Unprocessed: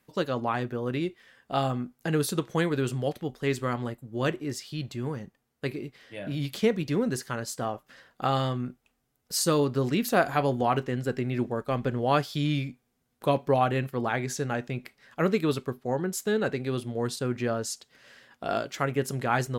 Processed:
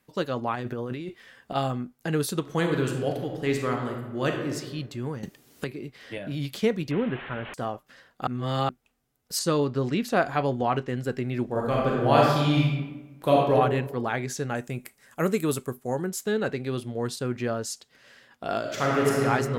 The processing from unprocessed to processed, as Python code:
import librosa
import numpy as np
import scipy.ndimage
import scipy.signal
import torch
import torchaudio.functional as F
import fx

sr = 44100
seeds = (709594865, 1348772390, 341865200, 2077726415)

y = fx.over_compress(x, sr, threshold_db=-34.0, ratio=-1.0, at=(0.54, 1.54), fade=0.02)
y = fx.reverb_throw(y, sr, start_s=2.4, length_s=2.15, rt60_s=1.2, drr_db=2.5)
y = fx.band_squash(y, sr, depth_pct=100, at=(5.23, 6.18))
y = fx.delta_mod(y, sr, bps=16000, step_db=-32.5, at=(6.91, 7.54))
y = fx.air_absorb(y, sr, metres=51.0, at=(9.39, 10.88))
y = fx.reverb_throw(y, sr, start_s=11.45, length_s=2.07, rt60_s=1.1, drr_db=-4.0)
y = fx.high_shelf_res(y, sr, hz=6000.0, db=11.0, q=1.5, at=(14.55, 16.09))
y = fx.reverb_throw(y, sr, start_s=18.6, length_s=0.62, rt60_s=2.7, drr_db=-5.0)
y = fx.edit(y, sr, fx.reverse_span(start_s=8.27, length_s=0.42), tone=tone)